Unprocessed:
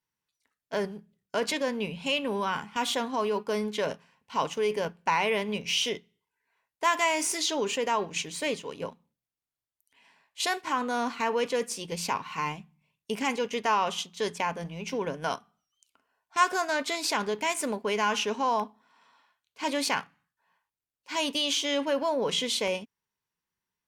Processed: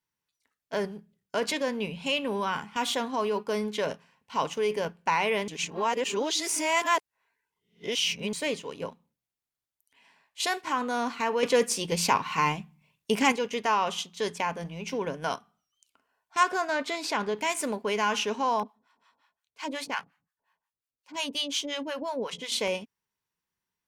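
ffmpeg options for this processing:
-filter_complex "[0:a]asettb=1/sr,asplit=3[a][b][c];[a]atrim=end=16.434[d];[b]atrim=start=16.43:end=17.37,asetpts=PTS-STARTPTS,afade=t=in:d=0.004:c=qsin,afade=t=out:st=0.936:d=0.004:c=qsin,aemphasis=mode=reproduction:type=cd[e];[c]atrim=start=17.366[f];[d][e]acrossfade=d=0.004:c1=hsin:c2=qsin[g];[g][f]acrossfade=d=0.004:c1=qsin:c2=hsin,asettb=1/sr,asplit=3[h][i][j];[h]atrim=end=18.634[k];[i]atrim=start=18.63:end=22.52,asetpts=PTS-STARTPTS,afade=t=in:d=0.004:c=qsin,afade=t=out:st=3.886:d=0.004:c=qsin,acrossover=split=670[l][m];[l]aeval=exprs='val(0)*(1-1/2+1/2*cos(2*PI*5.6*n/s))':c=same[n];[m]aeval=exprs='val(0)*(1-1/2-1/2*cos(2*PI*5.6*n/s))':c=same[o];[n][o]amix=inputs=2:normalize=0[p];[j]atrim=start=22.516[q];[k][p]acrossfade=d=0.004:c1=hsin:c2=qsin[r];[r][q]acrossfade=d=0.004:c1=qsin:c2=hsin,asplit=5[s][t][u][v][w];[s]atrim=end=5.482[x];[t]atrim=start=5.478:end=8.332,asetpts=PTS-STARTPTS,areverse[y];[u]atrim=start=8.328:end=11.432[z];[v]atrim=start=11.428:end=13.322,asetpts=PTS-STARTPTS,volume=6dB[aa];[w]atrim=start=13.318[ab];[x][y]acrossfade=d=0.004:c1=hsin:c2=hsin[ac];[ac][z]acrossfade=d=0.004:c1=hsin:c2=hsin[ad];[ad][aa]acrossfade=d=0.004:c1=hsin:c2=hsin[ae];[ae][ab]acrossfade=d=0.004:c1=hsin:c2=hsin"

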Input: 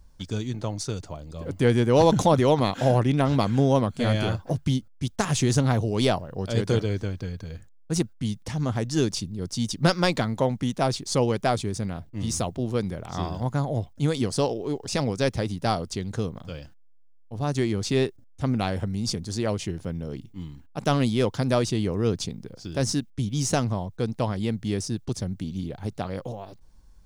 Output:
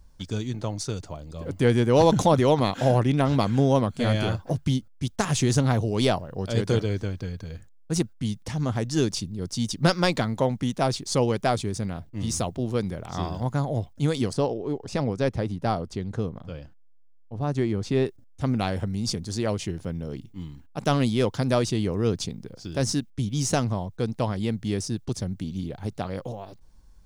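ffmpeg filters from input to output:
-filter_complex "[0:a]asettb=1/sr,asplit=3[a][b][c];[a]atrim=end=14.334[d];[b]atrim=start=14.33:end=18.06,asetpts=PTS-STARTPTS,afade=t=in:d=0.004:c=qsin,afade=t=out:st=3.726:d=0.004:c=qsin,highshelf=f=2.8k:g=-11.5[e];[c]atrim=start=18.056[f];[d][e]acrossfade=d=0.004:c1=hsin:c2=qsin[g];[g][f]acrossfade=d=0.004:c1=qsin:c2=hsin"

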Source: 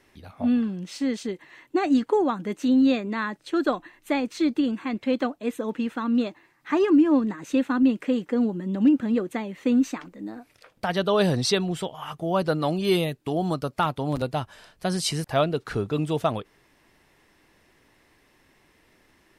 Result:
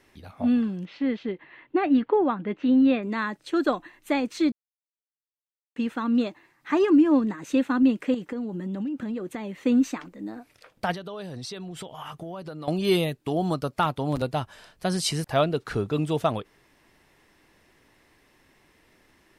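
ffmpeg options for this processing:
-filter_complex "[0:a]asettb=1/sr,asplit=3[a][b][c];[a]atrim=end=0.854[d];[b]atrim=start=0.85:end=3.03,asetpts=PTS-STARTPTS,afade=t=in:d=0.004:c=qsin,afade=t=out:st=2.176:d=0.004:c=qsin,lowpass=f=3.2k:w=0.5412,lowpass=f=3.2k:w=1.3066[e];[c]atrim=start=3.026[f];[d][e]acrossfade=d=0.004:c1=hsin:c2=qsin[g];[g][f]acrossfade=d=0.004:c1=qsin:c2=hsin,asettb=1/sr,asplit=3[h][i][j];[h]atrim=end=8.144[k];[i]atrim=start=8.14:end=9.49,asetpts=PTS-STARTPTS,afade=t=in:d=0.004:c=qsin,afade=t=out:st=1.346:d=0.004:c=qsin,acompressor=threshold=-27dB:ratio=12:attack=3.2:release=140:knee=1:detection=peak[l];[j]atrim=start=9.486[m];[k][l]acrossfade=d=0.004:c1=hsin:c2=qsin[n];[n][m]acrossfade=d=0.004:c1=qsin:c2=hsin,asettb=1/sr,asplit=3[o][p][q];[o]atrim=end=10.944[r];[p]atrim=start=10.94:end=12.68,asetpts=PTS-STARTPTS,afade=t=in:d=0.004:c=qsin,afade=t=out:st=1.736:d=0.004:c=qsin,acompressor=threshold=-33dB:ratio=12:attack=3.2:release=140:knee=1:detection=peak[s];[q]atrim=start=12.676[t];[r][s]acrossfade=d=0.004:c1=hsin:c2=qsin[u];[u][t]acrossfade=d=0.004:c1=qsin:c2=hsin,asplit=3[v][w][x];[v]atrim=end=4.52,asetpts=PTS-STARTPTS,afade=t=out:st=4.516:d=0.004:c=hsin[y];[w]atrim=start=4.52:end=5.76,asetpts=PTS-STARTPTS,volume=0[z];[x]atrim=start=5.76,asetpts=PTS-STARTPTS,afade=t=in:d=0.004:c=hsin[aa];[y][z][aa]concat=n=3:v=0:a=1"

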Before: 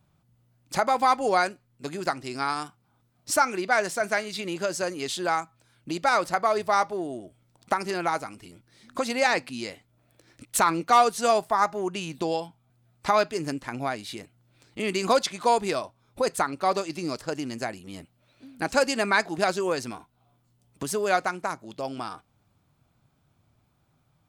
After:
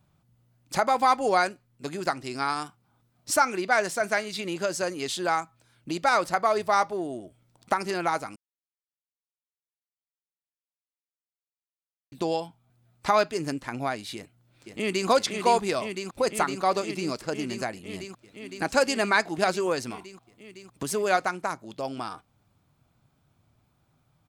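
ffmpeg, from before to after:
-filter_complex "[0:a]asplit=2[a][b];[b]afade=t=in:st=14.15:d=0.01,afade=t=out:st=15.08:d=0.01,aecho=0:1:510|1020|1530|2040|2550|3060|3570|4080|4590|5100|5610|6120:0.562341|0.47799|0.406292|0.345348|0.293546|0.249514|0.212087|0.180274|0.153233|0.130248|0.110711|0.094104[c];[a][c]amix=inputs=2:normalize=0,asplit=3[d][e][f];[d]atrim=end=8.36,asetpts=PTS-STARTPTS,afade=t=out:st=8.356:d=0.004:c=hsin[g];[e]atrim=start=8.36:end=12.12,asetpts=PTS-STARTPTS,volume=0[h];[f]atrim=start=12.12,asetpts=PTS-STARTPTS,afade=t=in:d=0.004:c=hsin[i];[g][h][i]concat=n=3:v=0:a=1"

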